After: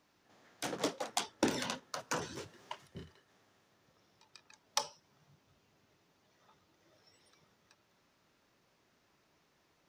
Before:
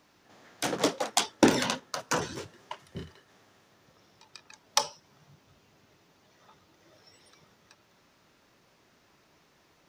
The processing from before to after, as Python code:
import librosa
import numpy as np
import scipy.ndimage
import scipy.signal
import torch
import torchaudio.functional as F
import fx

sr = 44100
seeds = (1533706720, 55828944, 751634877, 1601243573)

y = fx.band_squash(x, sr, depth_pct=40, at=(1.09, 2.87))
y = y * librosa.db_to_amplitude(-8.5)